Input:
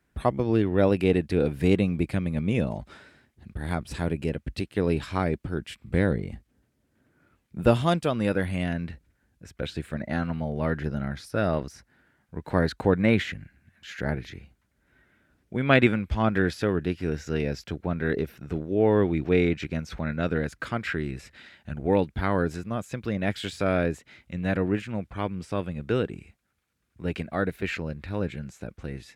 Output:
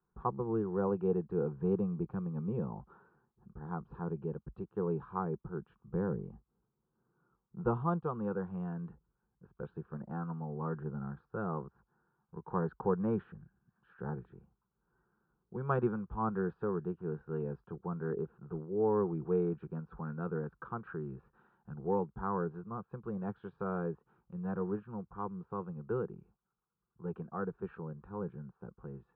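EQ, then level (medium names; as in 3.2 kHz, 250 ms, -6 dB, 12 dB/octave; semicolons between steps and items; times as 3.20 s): four-pole ladder low-pass 1.5 kHz, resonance 35%; distance through air 160 m; static phaser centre 410 Hz, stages 8; 0.0 dB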